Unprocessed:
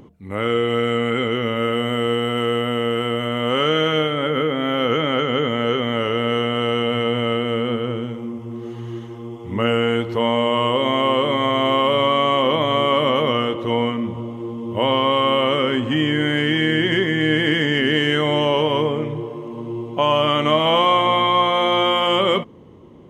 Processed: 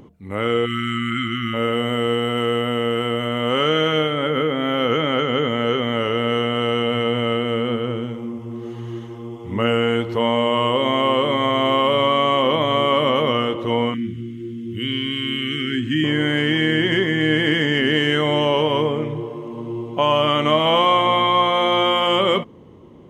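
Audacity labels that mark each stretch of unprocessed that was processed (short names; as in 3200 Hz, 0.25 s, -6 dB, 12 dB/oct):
0.660000	1.540000	spectral delete 360–1100 Hz
13.940000	16.040000	elliptic band-stop 340–1600 Hz, stop band 50 dB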